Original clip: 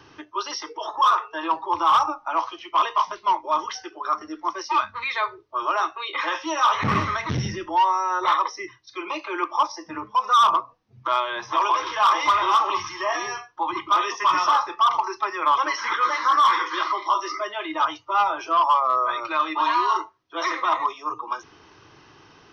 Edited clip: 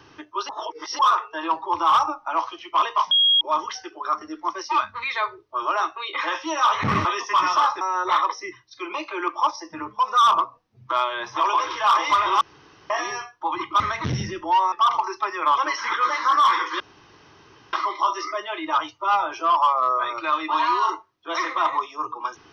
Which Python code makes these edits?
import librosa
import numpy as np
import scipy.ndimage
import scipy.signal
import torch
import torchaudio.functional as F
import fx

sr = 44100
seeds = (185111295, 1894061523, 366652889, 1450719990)

y = fx.edit(x, sr, fx.reverse_span(start_s=0.49, length_s=0.5),
    fx.bleep(start_s=3.11, length_s=0.3, hz=3280.0, db=-14.0),
    fx.swap(start_s=7.05, length_s=0.92, other_s=13.96, other_length_s=0.76),
    fx.room_tone_fill(start_s=12.57, length_s=0.49),
    fx.insert_room_tone(at_s=16.8, length_s=0.93), tone=tone)